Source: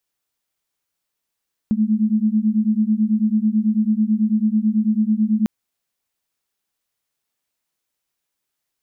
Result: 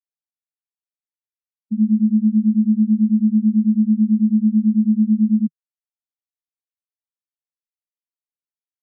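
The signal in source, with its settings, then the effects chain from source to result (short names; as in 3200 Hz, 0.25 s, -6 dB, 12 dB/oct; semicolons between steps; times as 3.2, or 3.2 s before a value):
beating tones 211 Hz, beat 9.1 Hz, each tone -18 dBFS 3.75 s
steep high-pass 160 Hz 96 dB/oct; sample leveller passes 1; spectral expander 2.5:1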